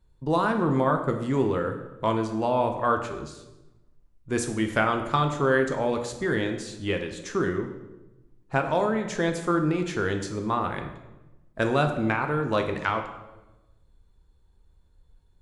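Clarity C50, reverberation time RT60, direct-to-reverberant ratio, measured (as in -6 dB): 8.0 dB, 1.0 s, 4.5 dB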